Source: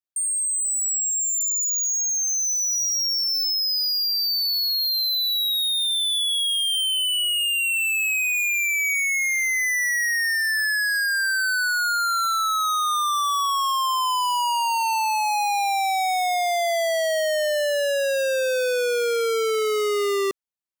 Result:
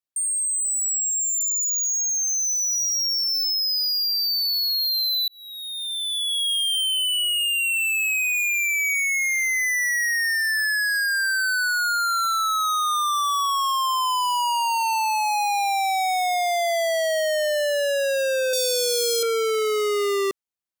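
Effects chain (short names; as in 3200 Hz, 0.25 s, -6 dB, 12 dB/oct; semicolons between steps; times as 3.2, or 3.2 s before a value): 5.28–6.51 fade in; 18.53–19.23 EQ curve 400 Hz 0 dB, 1900 Hz -17 dB, 3800 Hz +11 dB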